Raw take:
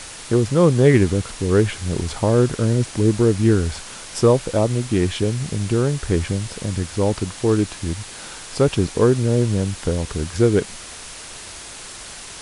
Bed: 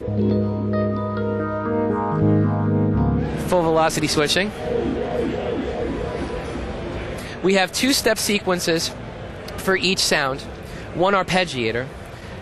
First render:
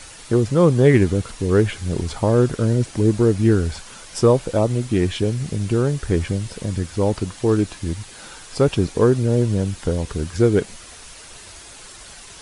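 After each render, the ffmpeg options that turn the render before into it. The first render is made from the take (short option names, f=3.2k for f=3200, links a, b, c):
-af "afftdn=nr=7:nf=-37"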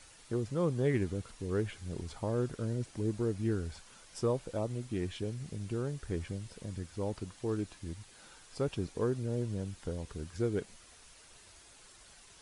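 -af "volume=-16.5dB"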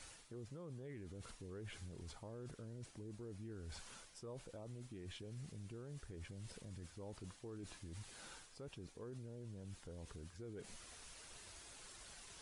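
-af "areverse,acompressor=threshold=-41dB:ratio=12,areverse,alimiter=level_in=18.5dB:limit=-24dB:level=0:latency=1:release=34,volume=-18.5dB"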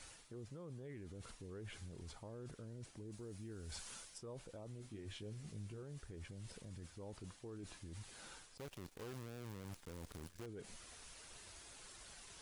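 -filter_complex "[0:a]asettb=1/sr,asplit=3[a][b][c];[a]atrim=end=3.124[d];[b]atrim=start=3.12:end=4.18,asetpts=PTS-STARTPTS,afade=t=in:d=0.004:c=qsin,afade=t=out:st=1.056:d=0.004:c=qsin,highshelf=f=4k:g=8[e];[c]atrim=start=4.176[f];[d][e]acrossfade=d=0.004:c1=hsin:c2=qsin[g];[g][f]acrossfade=d=0.004:c1=qsin:c2=hsin,asettb=1/sr,asplit=3[h][i][j];[h]atrim=end=4.784[k];[i]atrim=start=4.78:end=5.83,asetpts=PTS-STARTPTS,afade=t=in:d=0.004:c=qsin,afade=t=out:st=1.046:d=0.004:c=qsin,asplit=2[l][m];[m]adelay=19,volume=-6dB[n];[l][n]amix=inputs=2:normalize=0,atrim=end_sample=46305[o];[j]atrim=start=5.826[p];[k][o]acrossfade=d=0.004:c1=hsin:c2=qsin[q];[q][p]acrossfade=d=0.004:c1=qsin:c2=hsin,asettb=1/sr,asplit=3[r][s][t];[r]atrim=end=8.574[u];[s]atrim=start=8.57:end=10.46,asetpts=PTS-STARTPTS,afade=t=in:d=0.004:c=qsin,afade=t=out:st=1.886:d=0.004:c=qsin,acrusher=bits=9:dc=4:mix=0:aa=0.000001[v];[t]atrim=start=10.456[w];[u][v]acrossfade=d=0.004:c1=hsin:c2=qsin[x];[x][w]acrossfade=d=0.004:c1=qsin:c2=hsin"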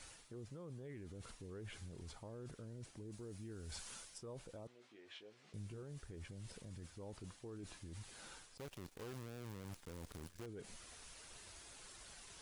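-filter_complex "[0:a]asettb=1/sr,asplit=3[a][b][c];[a]atrim=end=4.674[d];[b]atrim=start=4.67:end=5.54,asetpts=PTS-STARTPTS,afade=t=in:d=0.004:c=qsin,afade=t=out:st=0.866:d=0.004:c=qsin,highpass=550,lowpass=3.9k[e];[c]atrim=start=5.536[f];[d][e]acrossfade=d=0.004:c1=hsin:c2=qsin[g];[g][f]acrossfade=d=0.004:c1=qsin:c2=hsin"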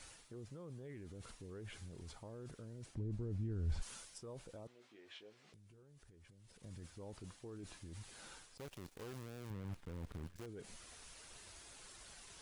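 -filter_complex "[0:a]asplit=3[a][b][c];[a]afade=t=out:st=2.94:d=0.02[d];[b]aemphasis=mode=reproduction:type=riaa,afade=t=in:st=2.94:d=0.02,afade=t=out:st=3.81:d=0.02[e];[c]afade=t=in:st=3.81:d=0.02[f];[d][e][f]amix=inputs=3:normalize=0,asplit=3[g][h][i];[g]afade=t=out:st=5.34:d=0.02[j];[h]acompressor=threshold=-59dB:ratio=20:attack=3.2:release=140:knee=1:detection=peak,afade=t=in:st=5.34:d=0.02,afade=t=out:st=6.62:d=0.02[k];[i]afade=t=in:st=6.62:d=0.02[l];[j][k][l]amix=inputs=3:normalize=0,asettb=1/sr,asplit=3[m][n][o];[m]atrim=end=9.504[p];[n]atrim=start=9.5:end=10.36,asetpts=PTS-STARTPTS,afade=t=in:d=0.004:c=qsin,afade=t=out:st=0.856:d=0.004:c=qsin,bass=f=250:g=6,treble=f=4k:g=-10[q];[o]atrim=start=10.356[r];[p][q]acrossfade=d=0.004:c1=hsin:c2=qsin[s];[s][r]acrossfade=d=0.004:c1=qsin:c2=hsin"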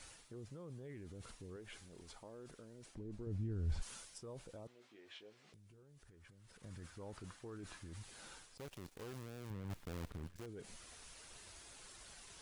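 -filter_complex "[0:a]asettb=1/sr,asplit=3[a][b][c];[a]atrim=end=1.564[d];[b]atrim=start=1.56:end=3.27,asetpts=PTS-STARTPTS,afade=t=in:d=0.004:c=qsin,afade=t=out:st=1.706:d=0.004:c=qsin,equalizer=f=96:t=o:w=1.7:g=-11.5[e];[c]atrim=start=3.266[f];[d][e]acrossfade=d=0.004:c1=hsin:c2=qsin[g];[g][f]acrossfade=d=0.004:c1=qsin:c2=hsin,asettb=1/sr,asplit=3[h][i][j];[h]atrim=end=6.064[k];[i]atrim=start=6.06:end=7.96,asetpts=PTS-STARTPTS,afade=t=in:d=0.004:c=qsin,afade=t=out:st=1.896:d=0.004:c=qsin,equalizer=f=1.4k:t=o:w=1.1:g=7.5[l];[j]atrim=start=7.956[m];[k][l]acrossfade=d=0.004:c1=hsin:c2=qsin[n];[n][m]acrossfade=d=0.004:c1=qsin:c2=hsin,asplit=3[o][p][q];[o]afade=t=out:st=9.69:d=0.02[r];[p]acrusher=bits=8:dc=4:mix=0:aa=0.000001,afade=t=in:st=9.69:d=0.02,afade=t=out:st=10.09:d=0.02[s];[q]afade=t=in:st=10.09:d=0.02[t];[r][s][t]amix=inputs=3:normalize=0"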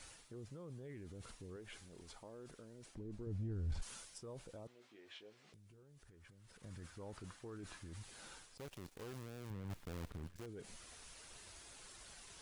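-af "asoftclip=type=tanh:threshold=-32.5dB"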